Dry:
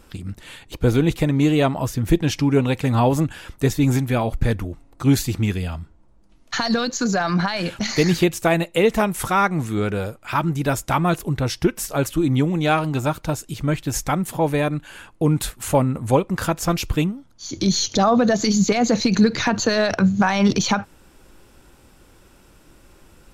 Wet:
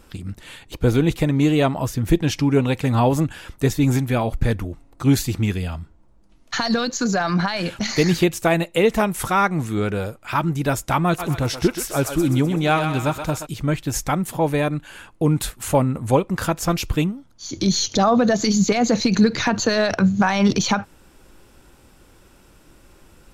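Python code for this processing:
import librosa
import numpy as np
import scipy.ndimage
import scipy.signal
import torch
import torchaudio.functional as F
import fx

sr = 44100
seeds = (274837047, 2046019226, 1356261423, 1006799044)

y = fx.echo_thinned(x, sr, ms=127, feedback_pct=54, hz=610.0, wet_db=-6.0, at=(11.18, 13.45), fade=0.02)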